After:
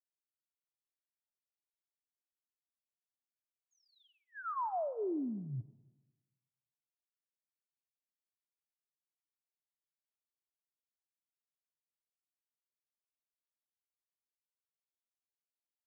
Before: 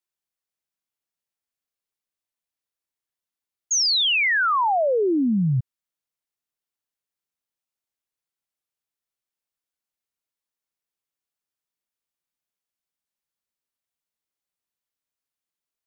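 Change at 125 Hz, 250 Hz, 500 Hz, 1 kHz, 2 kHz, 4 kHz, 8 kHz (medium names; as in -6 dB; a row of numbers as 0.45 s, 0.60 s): -19.5 dB, -17.0 dB, -16.0 dB, -16.5 dB, -31.5 dB, under -40 dB, no reading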